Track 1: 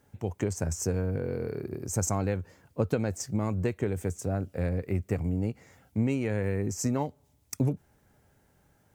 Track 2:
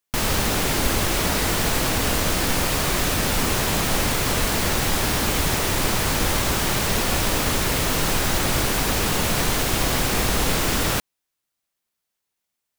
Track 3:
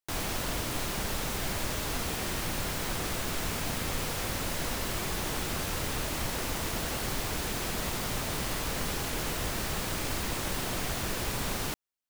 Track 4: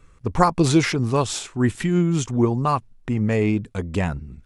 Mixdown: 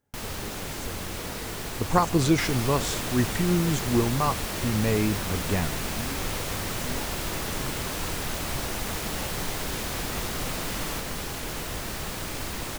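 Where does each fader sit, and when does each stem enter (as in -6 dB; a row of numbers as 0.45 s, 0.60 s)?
-12.0 dB, -13.0 dB, -0.5 dB, -4.5 dB; 0.00 s, 0.00 s, 2.30 s, 1.55 s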